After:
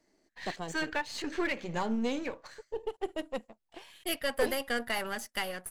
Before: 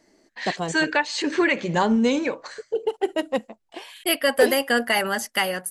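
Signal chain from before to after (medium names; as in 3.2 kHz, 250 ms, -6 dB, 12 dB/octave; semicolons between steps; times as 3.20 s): partial rectifier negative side -7 dB; trim -9 dB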